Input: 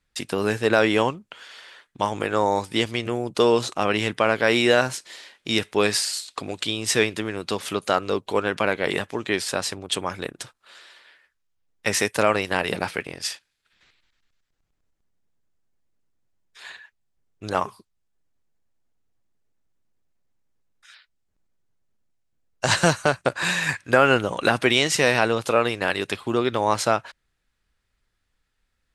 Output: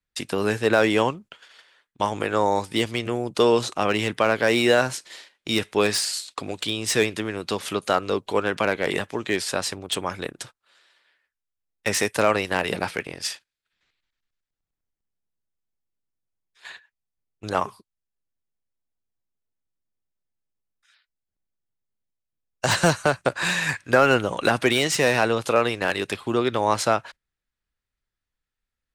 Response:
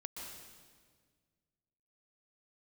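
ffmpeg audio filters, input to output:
-filter_complex "[0:a]agate=range=-12dB:threshold=-42dB:ratio=16:detection=peak,acrossover=split=610|1100[link_01][link_02][link_03];[link_03]asoftclip=type=hard:threshold=-18dB[link_04];[link_01][link_02][link_04]amix=inputs=3:normalize=0"

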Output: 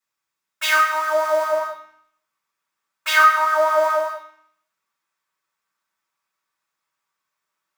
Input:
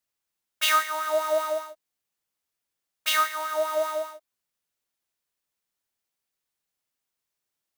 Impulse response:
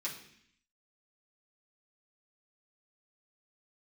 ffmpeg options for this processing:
-filter_complex "[0:a]asetnsamples=nb_out_samples=441:pad=0,asendcmd='1.52 equalizer g 15',equalizer=frequency=1200:width=1:gain=9[link_01];[1:a]atrim=start_sample=2205[link_02];[link_01][link_02]afir=irnorm=-1:irlink=0"

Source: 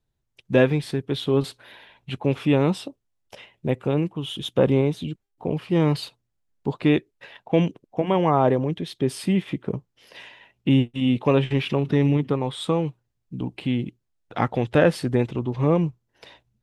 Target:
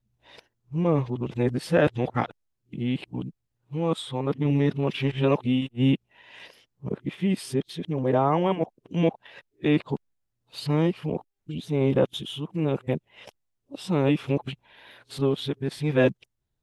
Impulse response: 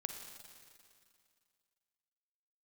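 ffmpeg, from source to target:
-af "areverse,volume=-3dB"

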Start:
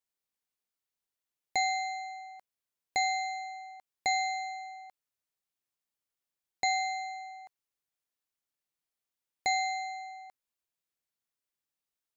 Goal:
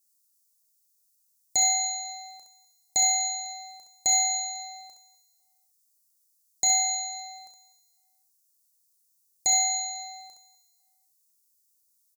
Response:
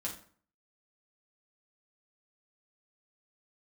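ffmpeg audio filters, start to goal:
-filter_complex "[0:a]asplit=2[link_01][link_02];[link_02]aecho=0:1:34|66:0.398|0.531[link_03];[link_01][link_03]amix=inputs=2:normalize=0,aexciter=amount=9.6:drive=9.6:freq=4400,tiltshelf=frequency=640:gain=6.5,asplit=2[link_04][link_05];[link_05]aecho=0:1:250|500|750:0.106|0.0445|0.0187[link_06];[link_04][link_06]amix=inputs=2:normalize=0,volume=-3dB"

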